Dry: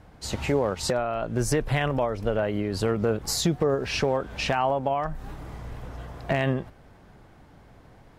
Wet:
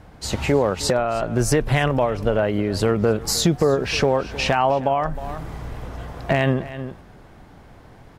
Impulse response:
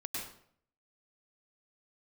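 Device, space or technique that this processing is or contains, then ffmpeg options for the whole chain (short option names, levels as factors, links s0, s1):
ducked delay: -filter_complex "[0:a]asplit=3[s0][s1][s2];[s1]adelay=311,volume=0.398[s3];[s2]apad=whole_len=374845[s4];[s3][s4]sidechaincompress=threshold=0.0224:ratio=8:attack=16:release=407[s5];[s0][s5]amix=inputs=2:normalize=0,volume=1.88"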